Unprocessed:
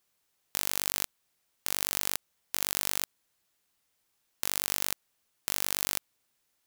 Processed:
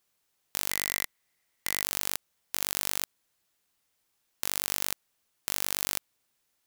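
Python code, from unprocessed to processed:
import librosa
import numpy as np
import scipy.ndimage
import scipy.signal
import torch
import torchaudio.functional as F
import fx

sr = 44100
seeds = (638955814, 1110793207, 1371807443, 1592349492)

y = fx.peak_eq(x, sr, hz=2000.0, db=12.0, octaves=0.23, at=(0.71, 1.83))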